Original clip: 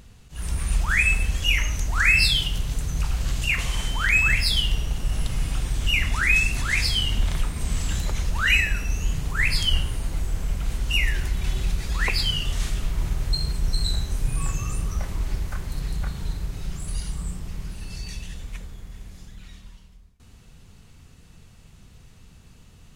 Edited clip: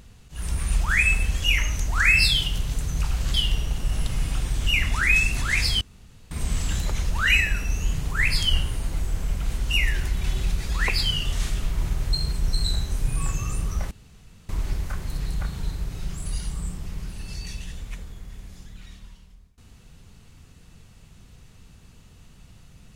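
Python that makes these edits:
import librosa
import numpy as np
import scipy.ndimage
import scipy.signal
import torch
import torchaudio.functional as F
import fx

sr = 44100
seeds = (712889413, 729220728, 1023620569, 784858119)

y = fx.edit(x, sr, fx.cut(start_s=3.34, length_s=1.2),
    fx.room_tone_fill(start_s=7.01, length_s=0.5),
    fx.insert_room_tone(at_s=15.11, length_s=0.58), tone=tone)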